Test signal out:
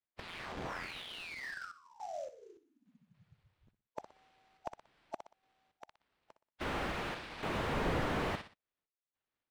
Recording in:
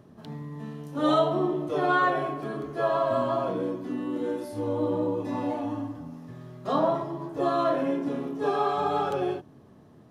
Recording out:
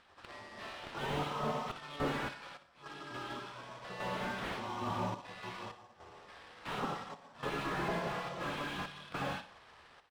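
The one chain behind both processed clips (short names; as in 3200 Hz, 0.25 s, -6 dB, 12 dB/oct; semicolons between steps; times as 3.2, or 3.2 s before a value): HPF 230 Hz 6 dB/oct; spectral gate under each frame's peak -15 dB weak; high shelf 2200 Hz +11.5 dB; in parallel at +0.5 dB: compressor, threshold -46 dBFS; on the sum: sample-rate reducer 6700 Hz, jitter 20%; random-step tremolo, depth 95%; air absorption 99 m; on a send: feedback echo 61 ms, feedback 33%, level -13.5 dB; on the sum: slew limiter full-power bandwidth 13 Hz; gain +4.5 dB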